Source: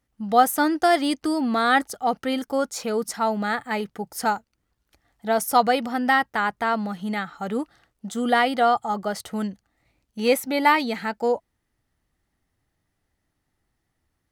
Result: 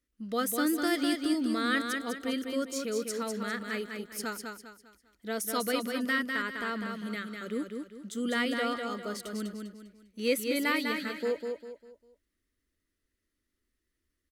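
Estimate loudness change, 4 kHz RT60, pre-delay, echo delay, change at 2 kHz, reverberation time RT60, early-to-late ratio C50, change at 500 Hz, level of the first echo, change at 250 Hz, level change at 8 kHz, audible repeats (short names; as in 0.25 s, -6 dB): -8.5 dB, none, none, 0.2 s, -7.0 dB, none, none, -9.0 dB, -5.0 dB, -5.5 dB, -4.5 dB, 4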